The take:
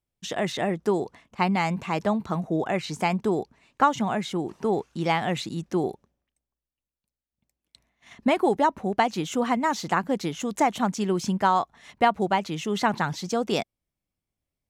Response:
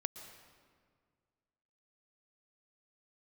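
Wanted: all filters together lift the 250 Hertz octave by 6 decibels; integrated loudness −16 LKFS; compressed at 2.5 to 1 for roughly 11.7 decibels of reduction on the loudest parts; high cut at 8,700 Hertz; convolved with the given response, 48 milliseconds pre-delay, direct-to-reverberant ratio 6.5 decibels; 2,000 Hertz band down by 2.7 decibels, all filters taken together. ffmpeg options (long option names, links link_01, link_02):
-filter_complex "[0:a]lowpass=8700,equalizer=frequency=250:width_type=o:gain=8,equalizer=frequency=2000:width_type=o:gain=-3.5,acompressor=threshold=-29dB:ratio=2.5,asplit=2[link_01][link_02];[1:a]atrim=start_sample=2205,adelay=48[link_03];[link_02][link_03]afir=irnorm=-1:irlink=0,volume=-6dB[link_04];[link_01][link_04]amix=inputs=2:normalize=0,volume=14dB"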